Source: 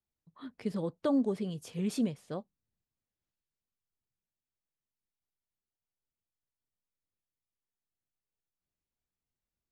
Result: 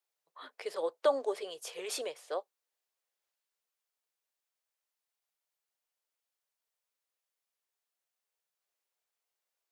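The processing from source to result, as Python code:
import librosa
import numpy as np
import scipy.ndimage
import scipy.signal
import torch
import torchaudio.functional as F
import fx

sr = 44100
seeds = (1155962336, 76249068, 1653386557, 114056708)

y = scipy.signal.sosfilt(scipy.signal.cheby2(4, 40, 230.0, 'highpass', fs=sr, output='sos'), x)
y = y * 10.0 ** (6.0 / 20.0)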